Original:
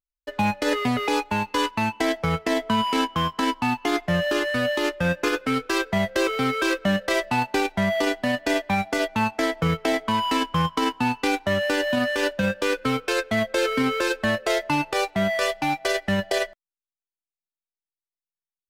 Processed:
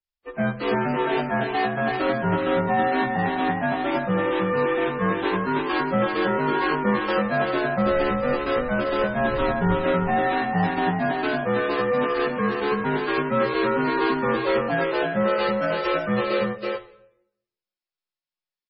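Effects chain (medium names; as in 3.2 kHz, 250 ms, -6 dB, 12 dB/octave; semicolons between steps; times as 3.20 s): frequency axis rescaled in octaves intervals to 80%; 7.77–9.74 s: wind noise 84 Hz -35 dBFS; delay 327 ms -4 dB; reverberation RT60 0.75 s, pre-delay 6 ms, DRR 8.5 dB; MP3 16 kbps 22.05 kHz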